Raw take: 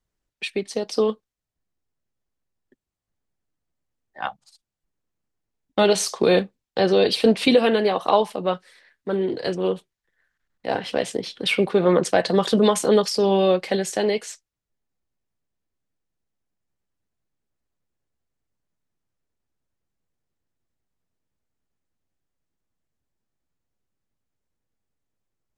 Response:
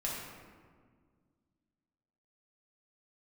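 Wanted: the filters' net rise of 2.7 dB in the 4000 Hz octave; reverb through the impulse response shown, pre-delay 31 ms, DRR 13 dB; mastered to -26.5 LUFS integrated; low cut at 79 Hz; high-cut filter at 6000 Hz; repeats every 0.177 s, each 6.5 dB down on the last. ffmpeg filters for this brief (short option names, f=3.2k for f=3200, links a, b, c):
-filter_complex "[0:a]highpass=79,lowpass=6k,equalizer=f=4k:t=o:g=4,aecho=1:1:177|354|531|708|885|1062:0.473|0.222|0.105|0.0491|0.0231|0.0109,asplit=2[a][b];[1:a]atrim=start_sample=2205,adelay=31[c];[b][c]afir=irnorm=-1:irlink=0,volume=-17dB[d];[a][d]amix=inputs=2:normalize=0,volume=-6.5dB"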